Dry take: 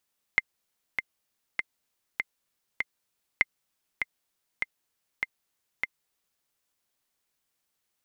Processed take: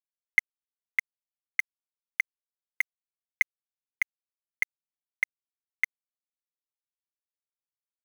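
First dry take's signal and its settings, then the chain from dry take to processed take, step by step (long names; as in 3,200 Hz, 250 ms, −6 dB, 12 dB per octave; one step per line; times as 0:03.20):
click track 99 BPM, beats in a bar 5, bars 2, 2,090 Hz, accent 7 dB −7 dBFS
in parallel at +0.5 dB: brickwall limiter −17.5 dBFS
on the sum: resonant band-pass 2,100 Hz, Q 2.5
centre clipping without the shift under −28.5 dBFS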